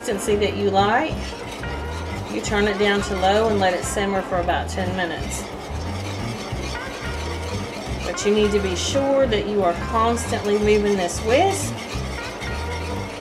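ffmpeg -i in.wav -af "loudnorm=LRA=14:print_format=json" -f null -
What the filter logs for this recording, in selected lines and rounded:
"input_i" : "-22.2",
"input_tp" : "-6.0",
"input_lra" : "5.3",
"input_thresh" : "-32.2",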